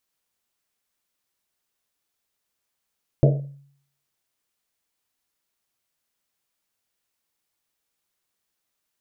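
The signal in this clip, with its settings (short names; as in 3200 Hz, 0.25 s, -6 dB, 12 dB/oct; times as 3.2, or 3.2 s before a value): Risset drum, pitch 140 Hz, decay 0.62 s, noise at 530 Hz, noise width 240 Hz, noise 30%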